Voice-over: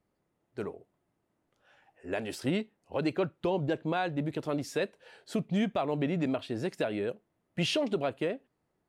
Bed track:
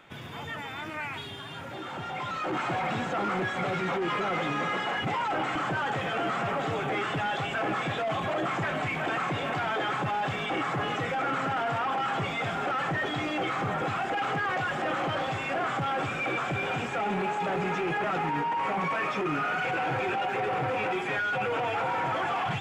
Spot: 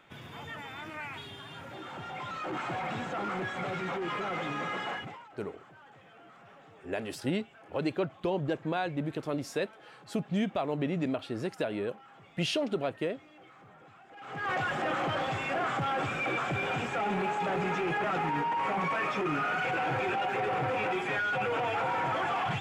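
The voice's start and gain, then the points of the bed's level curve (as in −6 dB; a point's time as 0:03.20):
4.80 s, −1.0 dB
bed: 0:04.93 −5 dB
0:05.31 −25.5 dB
0:14.08 −25.5 dB
0:14.50 −1.5 dB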